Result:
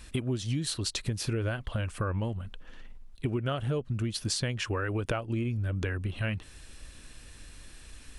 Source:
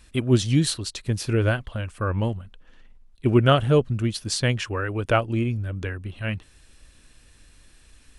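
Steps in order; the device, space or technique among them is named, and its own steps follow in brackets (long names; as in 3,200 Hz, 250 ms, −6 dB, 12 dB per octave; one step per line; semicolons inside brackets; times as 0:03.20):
serial compression, peaks first (downward compressor 5 to 1, threshold −29 dBFS, peak gain reduction 15.5 dB; downward compressor 2 to 1, threshold −34 dBFS, peak gain reduction 5.5 dB)
level +4.5 dB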